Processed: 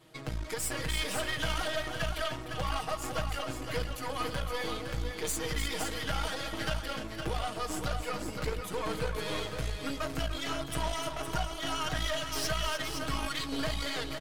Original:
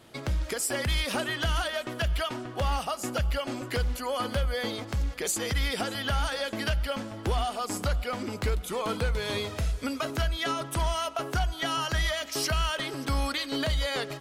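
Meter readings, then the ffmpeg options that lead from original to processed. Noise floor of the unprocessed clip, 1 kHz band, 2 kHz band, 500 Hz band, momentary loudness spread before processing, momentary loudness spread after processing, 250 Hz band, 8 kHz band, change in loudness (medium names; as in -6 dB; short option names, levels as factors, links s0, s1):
-42 dBFS, -3.5 dB, -3.5 dB, -4.0 dB, 4 LU, 4 LU, -4.0 dB, -3.5 dB, -4.5 dB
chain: -filter_complex "[0:a]flanger=delay=5.4:depth=9.6:regen=-69:speed=1.5:shape=sinusoidal,aecho=1:1:6.4:0.91,aeval=exprs='0.126*(cos(1*acos(clip(val(0)/0.126,-1,1)))-cos(1*PI/2))+0.0158*(cos(6*acos(clip(val(0)/0.126,-1,1)))-cos(6*PI/2))':c=same,asplit=2[s0][s1];[s1]aecho=0:1:301|513:0.335|0.447[s2];[s0][s2]amix=inputs=2:normalize=0,volume=0.668"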